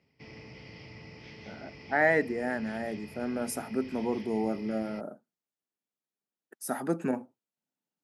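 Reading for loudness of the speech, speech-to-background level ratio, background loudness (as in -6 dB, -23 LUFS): -31.5 LUFS, 16.5 dB, -48.0 LUFS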